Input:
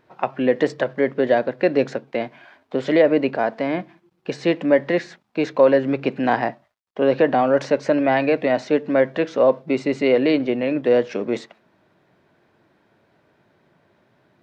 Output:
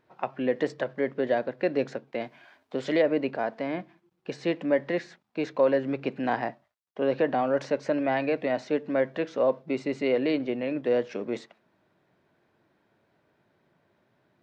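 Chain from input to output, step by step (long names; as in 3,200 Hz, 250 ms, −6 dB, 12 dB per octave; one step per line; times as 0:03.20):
0:02.19–0:03.01: high-shelf EQ 5,000 Hz → 3,600 Hz +8 dB
level −8 dB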